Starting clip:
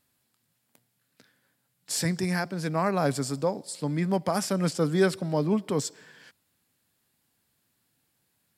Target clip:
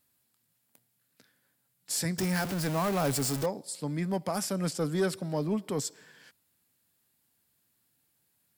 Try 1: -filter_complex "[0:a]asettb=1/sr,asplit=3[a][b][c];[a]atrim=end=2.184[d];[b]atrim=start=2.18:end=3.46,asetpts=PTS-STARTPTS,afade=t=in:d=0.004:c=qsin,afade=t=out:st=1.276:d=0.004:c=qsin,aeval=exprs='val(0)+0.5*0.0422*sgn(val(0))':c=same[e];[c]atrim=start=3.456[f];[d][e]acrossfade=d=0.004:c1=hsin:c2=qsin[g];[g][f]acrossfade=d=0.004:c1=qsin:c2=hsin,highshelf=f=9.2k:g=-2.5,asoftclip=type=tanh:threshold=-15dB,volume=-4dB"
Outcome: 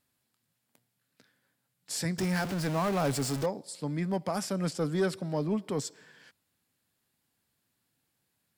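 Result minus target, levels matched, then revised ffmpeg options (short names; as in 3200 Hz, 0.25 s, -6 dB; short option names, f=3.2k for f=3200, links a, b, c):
8000 Hz band -3.5 dB
-filter_complex "[0:a]asettb=1/sr,asplit=3[a][b][c];[a]atrim=end=2.184[d];[b]atrim=start=2.18:end=3.46,asetpts=PTS-STARTPTS,afade=t=in:d=0.004:c=qsin,afade=t=out:st=1.276:d=0.004:c=qsin,aeval=exprs='val(0)+0.5*0.0422*sgn(val(0))':c=same[e];[c]atrim=start=3.456[f];[d][e]acrossfade=d=0.004:c1=hsin:c2=qsin[g];[g][f]acrossfade=d=0.004:c1=qsin:c2=hsin,highshelf=f=9.2k:g=8.5,asoftclip=type=tanh:threshold=-15dB,volume=-4dB"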